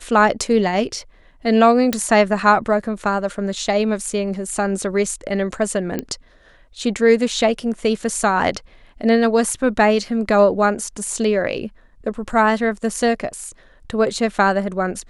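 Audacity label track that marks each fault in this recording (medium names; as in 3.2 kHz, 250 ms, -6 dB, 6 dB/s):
1.930000	1.930000	pop
5.990000	5.990000	pop -10 dBFS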